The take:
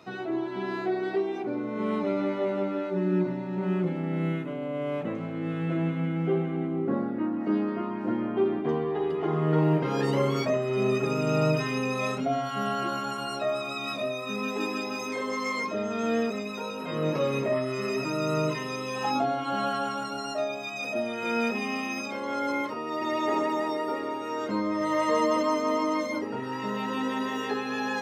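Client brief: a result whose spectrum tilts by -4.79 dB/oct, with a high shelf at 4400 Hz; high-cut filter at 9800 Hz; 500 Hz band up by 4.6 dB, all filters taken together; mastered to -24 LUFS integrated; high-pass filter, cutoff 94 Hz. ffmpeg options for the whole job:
-af "highpass=94,lowpass=9.8k,equalizer=f=500:t=o:g=6,highshelf=f=4.4k:g=8,volume=2dB"

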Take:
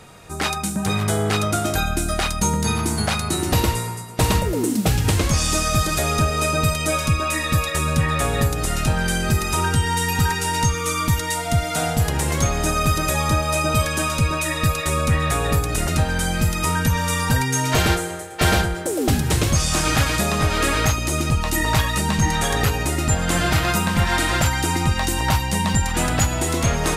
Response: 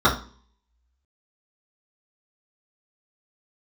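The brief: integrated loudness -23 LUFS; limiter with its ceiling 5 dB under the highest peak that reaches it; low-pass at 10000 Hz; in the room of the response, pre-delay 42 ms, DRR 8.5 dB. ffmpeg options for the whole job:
-filter_complex "[0:a]lowpass=10k,alimiter=limit=-12dB:level=0:latency=1,asplit=2[a][b];[1:a]atrim=start_sample=2205,adelay=42[c];[b][c]afir=irnorm=-1:irlink=0,volume=-29.5dB[d];[a][d]amix=inputs=2:normalize=0,volume=-2dB"

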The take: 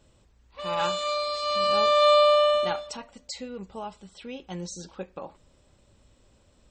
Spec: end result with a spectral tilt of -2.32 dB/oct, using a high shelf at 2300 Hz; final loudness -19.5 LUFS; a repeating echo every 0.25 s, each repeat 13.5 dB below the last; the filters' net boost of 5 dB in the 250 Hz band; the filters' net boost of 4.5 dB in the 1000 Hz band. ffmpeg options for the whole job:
-af "equalizer=f=250:t=o:g=6.5,equalizer=f=1k:t=o:g=7,highshelf=f=2.3k:g=-6.5,aecho=1:1:250|500:0.211|0.0444,volume=1dB"

